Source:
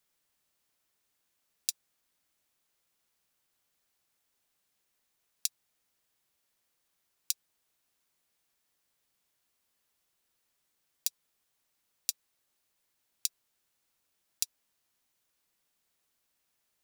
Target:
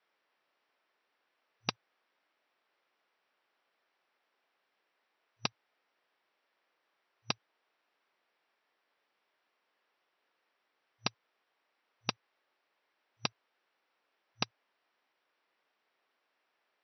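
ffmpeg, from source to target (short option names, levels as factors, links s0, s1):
-filter_complex "[0:a]asplit=2[s0][s1];[s1]aeval=exprs='(mod(3.98*val(0)+1,2)-1)/3.98':c=same,volume=0.668[s2];[s0][s2]amix=inputs=2:normalize=0,acrossover=split=310 2700:gain=0.0891 1 0.158[s3][s4][s5];[s3][s4][s5]amix=inputs=3:normalize=0,aeval=exprs='0.1*(cos(1*acos(clip(val(0)/0.1,-1,1)))-cos(1*PI/2))+0.00126*(cos(3*acos(clip(val(0)/0.1,-1,1)))-cos(3*PI/2))+0.0447*(cos(6*acos(clip(val(0)/0.1,-1,1)))-cos(6*PI/2))+0.00562*(cos(7*acos(clip(val(0)/0.1,-1,1)))-cos(7*PI/2))':c=same,afftfilt=real='re*between(b*sr/4096,110,5900)':imag='im*between(b*sr/4096,110,5900)':win_size=4096:overlap=0.75,volume=2.82"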